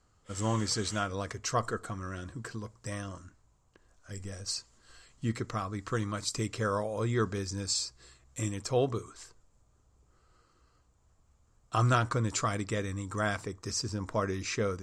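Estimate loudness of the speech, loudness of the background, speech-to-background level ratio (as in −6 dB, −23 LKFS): −33.0 LKFS, −47.0 LKFS, 14.0 dB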